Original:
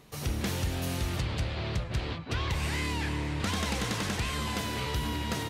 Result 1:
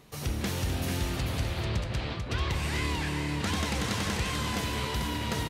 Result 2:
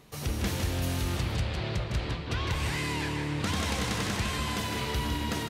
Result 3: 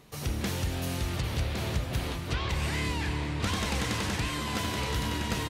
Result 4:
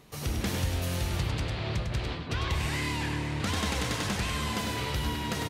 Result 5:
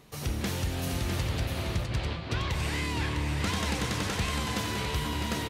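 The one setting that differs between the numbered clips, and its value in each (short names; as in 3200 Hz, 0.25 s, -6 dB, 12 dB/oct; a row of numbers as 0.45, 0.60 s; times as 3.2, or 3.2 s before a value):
echo, time: 0.442, 0.157, 1.111, 0.101, 0.654 s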